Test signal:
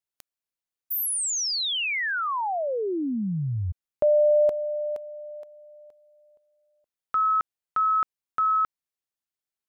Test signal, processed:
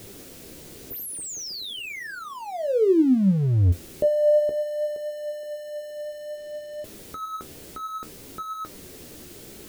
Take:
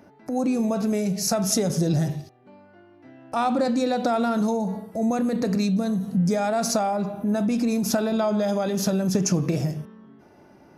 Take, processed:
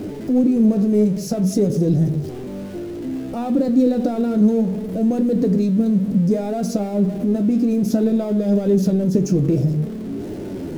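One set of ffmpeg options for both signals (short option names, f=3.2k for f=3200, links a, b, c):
-af "aeval=exprs='val(0)+0.5*0.0473*sgn(val(0))':c=same,lowshelf=f=620:t=q:w=1.5:g=14,flanger=delay=9.3:depth=6:regen=52:speed=0.58:shape=triangular,volume=-6.5dB"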